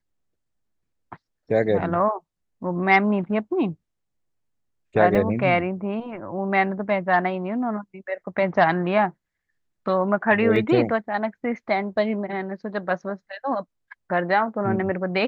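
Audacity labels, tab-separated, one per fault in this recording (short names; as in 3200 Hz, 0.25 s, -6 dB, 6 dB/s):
5.150000	5.150000	gap 2.8 ms
10.560000	10.560000	gap 2.1 ms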